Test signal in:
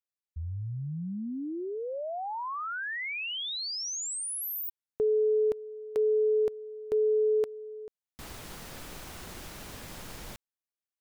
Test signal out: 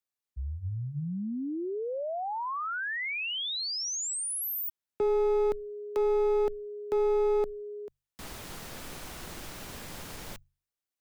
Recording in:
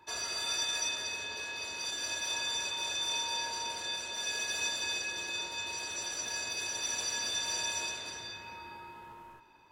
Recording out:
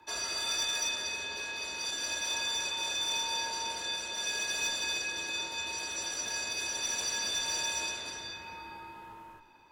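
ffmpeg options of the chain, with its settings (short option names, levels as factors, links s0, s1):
-af "aeval=exprs='clip(val(0),-1,0.0376)':c=same,bandreject=f=50:t=h:w=6,bandreject=f=100:t=h:w=6,bandreject=f=150:t=h:w=6,afreqshift=-15,volume=1.19"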